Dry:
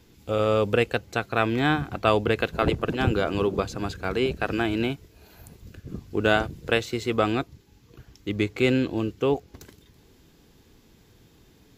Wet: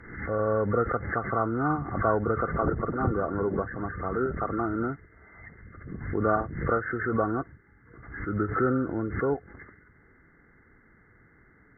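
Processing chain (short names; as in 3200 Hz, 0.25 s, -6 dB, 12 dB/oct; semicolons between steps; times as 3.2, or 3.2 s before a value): nonlinear frequency compression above 1100 Hz 4:1; treble ducked by the level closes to 1800 Hz, closed at -20.5 dBFS; backwards sustainer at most 70 dB/s; gain -4 dB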